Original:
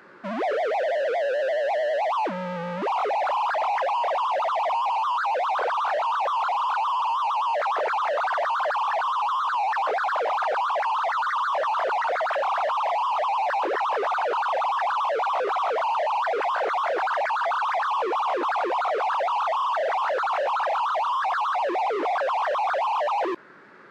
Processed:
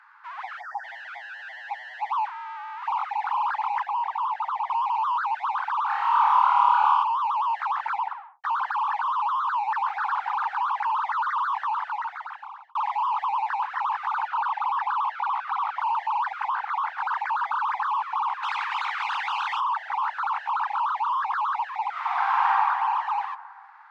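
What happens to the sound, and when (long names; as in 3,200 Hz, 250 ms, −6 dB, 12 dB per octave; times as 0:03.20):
0:00.61–0:00.84: time-frequency box erased 1,900–4,600 Hz
0:03.83–0:04.70: tilt shelving filter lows +4.5 dB, about 700 Hz
0:05.87–0:07.03: flutter between parallel walls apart 4.6 metres, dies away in 1 s
0:07.91: tape stop 0.53 s
0:09.53–0:10.00: delay throw 290 ms, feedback 50%, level −8.5 dB
0:11.56–0:12.75: fade out
0:14.28–0:15.80: low-pass filter 6,000 Hz
0:16.48–0:16.98: high-shelf EQ 7,000 Hz −8.5 dB
0:18.42–0:19.59: ceiling on every frequency bin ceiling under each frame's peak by 21 dB
0:21.89–0:22.48: thrown reverb, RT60 2.4 s, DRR −6.5 dB
whole clip: Butterworth high-pass 830 Hz 96 dB per octave; spectral tilt −4.5 dB per octave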